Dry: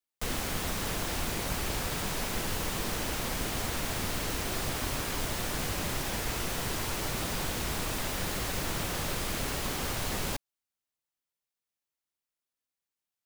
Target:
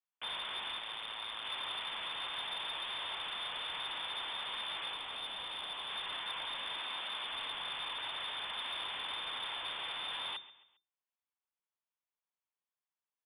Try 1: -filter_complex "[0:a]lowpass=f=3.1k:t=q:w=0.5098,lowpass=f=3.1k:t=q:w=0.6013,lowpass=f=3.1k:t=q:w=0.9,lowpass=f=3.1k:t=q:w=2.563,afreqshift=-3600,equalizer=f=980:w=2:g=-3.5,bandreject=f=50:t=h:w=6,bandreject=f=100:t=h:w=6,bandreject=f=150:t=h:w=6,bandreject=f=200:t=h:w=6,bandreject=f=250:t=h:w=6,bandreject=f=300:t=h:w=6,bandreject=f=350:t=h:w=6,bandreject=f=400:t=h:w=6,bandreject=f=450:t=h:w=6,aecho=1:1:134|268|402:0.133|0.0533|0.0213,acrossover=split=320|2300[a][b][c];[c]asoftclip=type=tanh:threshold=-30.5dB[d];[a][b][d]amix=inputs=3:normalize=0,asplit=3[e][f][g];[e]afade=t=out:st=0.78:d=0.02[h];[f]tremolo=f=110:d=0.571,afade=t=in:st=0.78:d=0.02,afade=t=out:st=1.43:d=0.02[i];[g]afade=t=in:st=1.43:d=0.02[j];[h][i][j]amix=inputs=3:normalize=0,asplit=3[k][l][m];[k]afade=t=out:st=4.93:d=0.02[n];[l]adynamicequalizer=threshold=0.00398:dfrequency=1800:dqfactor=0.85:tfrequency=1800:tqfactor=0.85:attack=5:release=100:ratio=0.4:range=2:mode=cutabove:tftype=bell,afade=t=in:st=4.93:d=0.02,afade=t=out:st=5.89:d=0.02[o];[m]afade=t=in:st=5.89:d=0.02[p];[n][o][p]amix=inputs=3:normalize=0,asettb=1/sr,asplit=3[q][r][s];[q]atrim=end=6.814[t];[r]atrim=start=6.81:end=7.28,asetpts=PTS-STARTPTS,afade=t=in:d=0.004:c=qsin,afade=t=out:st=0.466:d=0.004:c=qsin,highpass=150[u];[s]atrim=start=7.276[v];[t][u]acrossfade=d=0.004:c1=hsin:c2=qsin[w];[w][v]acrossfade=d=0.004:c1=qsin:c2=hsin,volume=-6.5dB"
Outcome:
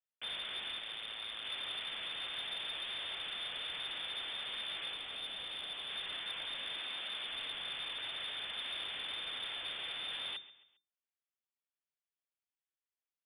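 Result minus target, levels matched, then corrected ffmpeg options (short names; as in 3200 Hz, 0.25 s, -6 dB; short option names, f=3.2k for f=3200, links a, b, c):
1000 Hz band -7.0 dB
-filter_complex "[0:a]lowpass=f=3.1k:t=q:w=0.5098,lowpass=f=3.1k:t=q:w=0.6013,lowpass=f=3.1k:t=q:w=0.9,lowpass=f=3.1k:t=q:w=2.563,afreqshift=-3600,equalizer=f=980:w=2:g=8,bandreject=f=50:t=h:w=6,bandreject=f=100:t=h:w=6,bandreject=f=150:t=h:w=6,bandreject=f=200:t=h:w=6,bandreject=f=250:t=h:w=6,bandreject=f=300:t=h:w=6,bandreject=f=350:t=h:w=6,bandreject=f=400:t=h:w=6,bandreject=f=450:t=h:w=6,aecho=1:1:134|268|402:0.133|0.0533|0.0213,acrossover=split=320|2300[a][b][c];[c]asoftclip=type=tanh:threshold=-30.5dB[d];[a][b][d]amix=inputs=3:normalize=0,asplit=3[e][f][g];[e]afade=t=out:st=0.78:d=0.02[h];[f]tremolo=f=110:d=0.571,afade=t=in:st=0.78:d=0.02,afade=t=out:st=1.43:d=0.02[i];[g]afade=t=in:st=1.43:d=0.02[j];[h][i][j]amix=inputs=3:normalize=0,asplit=3[k][l][m];[k]afade=t=out:st=4.93:d=0.02[n];[l]adynamicequalizer=threshold=0.00398:dfrequency=1800:dqfactor=0.85:tfrequency=1800:tqfactor=0.85:attack=5:release=100:ratio=0.4:range=2:mode=cutabove:tftype=bell,afade=t=in:st=4.93:d=0.02,afade=t=out:st=5.89:d=0.02[o];[m]afade=t=in:st=5.89:d=0.02[p];[n][o][p]amix=inputs=3:normalize=0,asettb=1/sr,asplit=3[q][r][s];[q]atrim=end=6.814[t];[r]atrim=start=6.81:end=7.28,asetpts=PTS-STARTPTS,afade=t=in:d=0.004:c=qsin,afade=t=out:st=0.466:d=0.004:c=qsin,highpass=150[u];[s]atrim=start=7.276[v];[t][u]acrossfade=d=0.004:c1=hsin:c2=qsin[w];[w][v]acrossfade=d=0.004:c1=qsin:c2=hsin,volume=-6.5dB"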